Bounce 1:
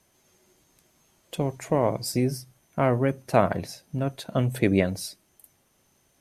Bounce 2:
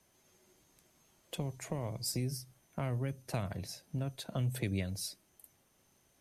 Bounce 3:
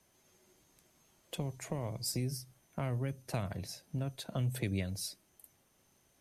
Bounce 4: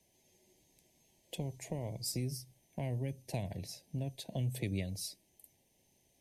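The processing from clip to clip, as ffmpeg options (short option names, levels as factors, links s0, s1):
-filter_complex "[0:a]acrossover=split=140|3000[s0][s1][s2];[s1]acompressor=threshold=0.0178:ratio=5[s3];[s0][s3][s2]amix=inputs=3:normalize=0,volume=0.596"
-af anull
-af "asuperstop=centerf=1300:order=4:qfactor=1.2,volume=0.841"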